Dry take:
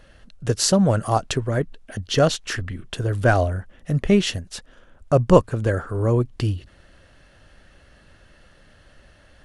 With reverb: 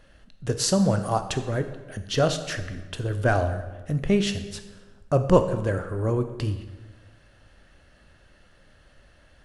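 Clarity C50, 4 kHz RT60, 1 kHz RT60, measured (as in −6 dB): 10.5 dB, 0.95 s, 1.2 s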